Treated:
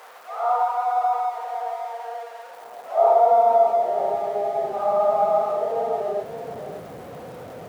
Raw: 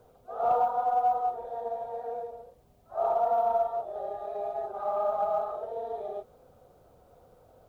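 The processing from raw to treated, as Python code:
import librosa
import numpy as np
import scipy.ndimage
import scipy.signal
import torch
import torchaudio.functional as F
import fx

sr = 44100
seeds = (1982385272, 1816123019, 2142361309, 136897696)

y = x + 0.5 * 10.0 ** (-42.0 / 20.0) * np.sign(x)
y = fx.filter_sweep_highpass(y, sr, from_hz=1100.0, to_hz=150.0, start_s=2.37, end_s=4.1, q=1.4)
y = fx.high_shelf(y, sr, hz=2000.0, db=-9.5)
y = y + 10.0 ** (-10.0 / 20.0) * np.pad(y, (int(578 * sr / 1000.0), 0))[:len(y)]
y = y * librosa.db_to_amplitude(8.5)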